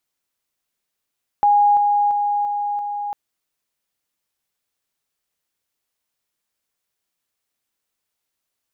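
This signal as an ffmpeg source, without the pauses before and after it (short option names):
-f lavfi -i "aevalsrc='pow(10,(-11-3*floor(t/0.34))/20)*sin(2*PI*822*t)':d=1.7:s=44100"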